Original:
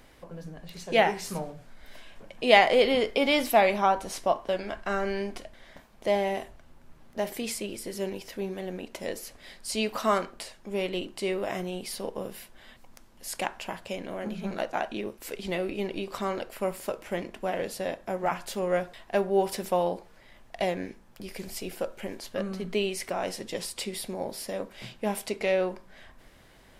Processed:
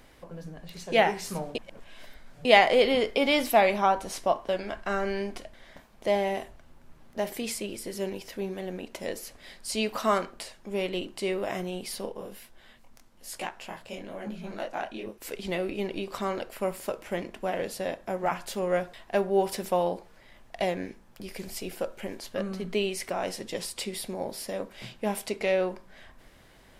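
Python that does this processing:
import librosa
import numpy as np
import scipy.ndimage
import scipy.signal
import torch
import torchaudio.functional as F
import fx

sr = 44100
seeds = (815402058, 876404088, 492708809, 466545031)

y = fx.detune_double(x, sr, cents=fx.line((12.05, 47.0), (15.2, 29.0)), at=(12.05, 15.2), fade=0.02)
y = fx.edit(y, sr, fx.reverse_span(start_s=1.55, length_s=0.9), tone=tone)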